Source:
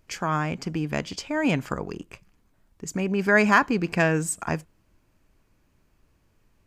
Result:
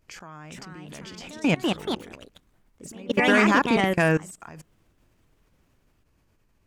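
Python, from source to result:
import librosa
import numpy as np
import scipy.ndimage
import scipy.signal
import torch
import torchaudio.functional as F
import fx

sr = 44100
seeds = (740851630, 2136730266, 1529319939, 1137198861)

y = fx.level_steps(x, sr, step_db=23)
y = fx.echo_pitch(y, sr, ms=427, semitones=3, count=2, db_per_echo=-3.0)
y = y * librosa.db_to_amplitude(3.5)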